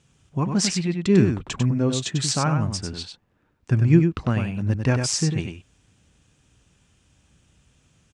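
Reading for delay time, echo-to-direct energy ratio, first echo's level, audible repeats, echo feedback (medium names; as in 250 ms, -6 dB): 97 ms, -6.0 dB, -6.0 dB, 1, no regular repeats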